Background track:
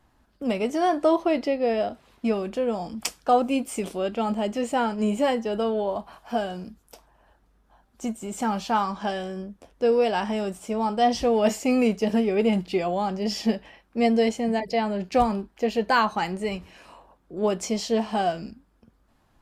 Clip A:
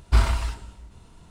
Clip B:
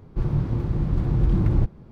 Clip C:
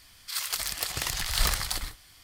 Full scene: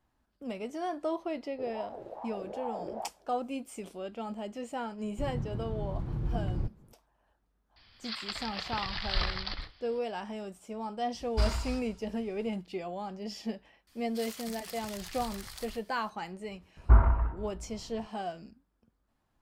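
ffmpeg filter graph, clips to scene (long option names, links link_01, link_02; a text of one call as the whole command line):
ffmpeg -i bed.wav -i cue0.wav -i cue1.wav -i cue2.wav -filter_complex "[2:a]asplit=2[link_01][link_02];[3:a]asplit=2[link_03][link_04];[1:a]asplit=2[link_05][link_06];[0:a]volume=-12.5dB[link_07];[link_01]aeval=exprs='val(0)*sin(2*PI*650*n/s+650*0.3/2.4*sin(2*PI*2.4*n/s))':channel_layout=same[link_08];[link_03]aresample=11025,aresample=44100[link_09];[link_05]equalizer=frequency=4900:width=3.6:gain=11.5[link_10];[link_04]acompressor=threshold=-29dB:ratio=6:attack=3.2:release=140:knee=1:detection=peak[link_11];[link_06]lowpass=frequency=1400:width=0.5412,lowpass=frequency=1400:width=1.3066[link_12];[link_08]atrim=end=1.91,asetpts=PTS-STARTPTS,volume=-17.5dB,afade=type=in:duration=0.004:curve=hsin,afade=type=out:start_time=1.906:duration=0.004:curve=hsin,adelay=1420[link_13];[link_02]atrim=end=1.91,asetpts=PTS-STARTPTS,volume=-12.5dB,afade=type=in:duration=0.004:curve=hsin,afade=type=out:start_time=1.906:duration=0.004:curve=hsin,adelay=5020[link_14];[link_09]atrim=end=2.23,asetpts=PTS-STARTPTS,volume=-4dB,afade=type=in:duration=0.004:curve=hsin,afade=type=out:start_time=2.226:duration=0.004:curve=hsin,adelay=7760[link_15];[link_10]atrim=end=1.3,asetpts=PTS-STARTPTS,volume=-10dB,afade=type=in:duration=0.004:curve=hsin,afade=type=out:start_time=1.296:duration=0.004:curve=hsin,adelay=11250[link_16];[link_11]atrim=end=2.23,asetpts=PTS-STARTPTS,volume=-10.5dB,afade=type=in:duration=0.004:curve=hsin,afade=type=out:start_time=2.226:duration=0.004:curve=hsin,adelay=13870[link_17];[link_12]atrim=end=1.3,asetpts=PTS-STARTPTS,volume=-1dB,afade=type=in:duration=0.004:curve=hsin,afade=type=out:start_time=1.296:duration=0.004:curve=hsin,adelay=16770[link_18];[link_07][link_13][link_14][link_15][link_16][link_17][link_18]amix=inputs=7:normalize=0" out.wav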